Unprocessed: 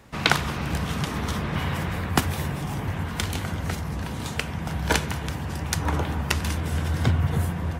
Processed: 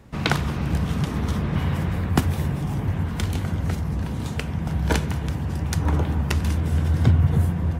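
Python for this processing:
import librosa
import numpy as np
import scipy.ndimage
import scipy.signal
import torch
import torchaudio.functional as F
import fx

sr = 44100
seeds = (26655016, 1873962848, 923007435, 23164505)

y = fx.low_shelf(x, sr, hz=480.0, db=10.0)
y = y * librosa.db_to_amplitude(-4.5)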